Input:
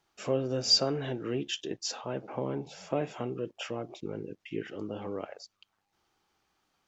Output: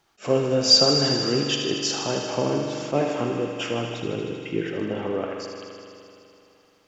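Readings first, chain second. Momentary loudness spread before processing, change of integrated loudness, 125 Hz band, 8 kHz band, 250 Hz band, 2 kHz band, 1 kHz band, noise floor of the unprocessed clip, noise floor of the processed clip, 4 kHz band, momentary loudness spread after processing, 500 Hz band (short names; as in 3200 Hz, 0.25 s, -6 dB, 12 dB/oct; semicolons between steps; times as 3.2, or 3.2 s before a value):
16 LU, +10.0 dB, +9.0 dB, n/a, +10.0 dB, +11.0 dB, +10.0 dB, -80 dBFS, -60 dBFS, +10.0 dB, 14 LU, +9.5 dB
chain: thinning echo 78 ms, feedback 83%, high-pass 600 Hz, level -7 dB; spring tank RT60 2.9 s, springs 42 ms, chirp 60 ms, DRR 4.5 dB; attack slew limiter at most 330 dB/s; gain +8 dB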